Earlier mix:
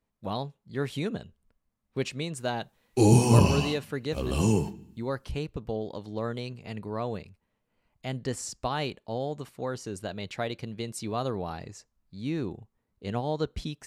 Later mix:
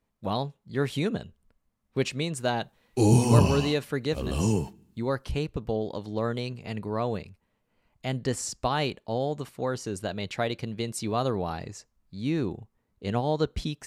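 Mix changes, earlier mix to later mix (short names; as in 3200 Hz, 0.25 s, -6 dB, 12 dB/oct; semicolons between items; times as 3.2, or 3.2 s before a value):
speech +3.5 dB; background: send -9.5 dB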